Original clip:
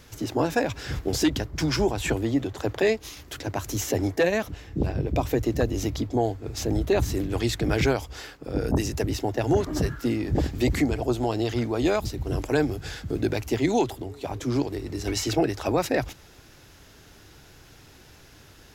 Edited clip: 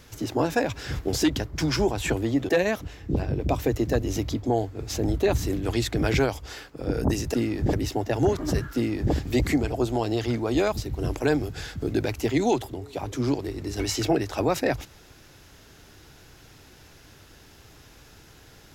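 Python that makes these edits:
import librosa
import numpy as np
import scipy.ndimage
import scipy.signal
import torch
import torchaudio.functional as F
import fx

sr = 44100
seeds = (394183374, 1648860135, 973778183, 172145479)

y = fx.edit(x, sr, fx.cut(start_s=2.49, length_s=1.67),
    fx.duplicate(start_s=10.03, length_s=0.39, to_s=9.01), tone=tone)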